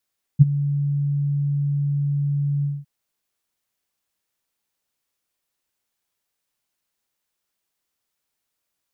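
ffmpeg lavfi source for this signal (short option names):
-f lavfi -i "aevalsrc='0.668*sin(2*PI*143*t)':d=2.458:s=44100,afade=t=in:d=0.026,afade=t=out:st=0.026:d=0.022:silence=0.168,afade=t=out:st=2.25:d=0.208"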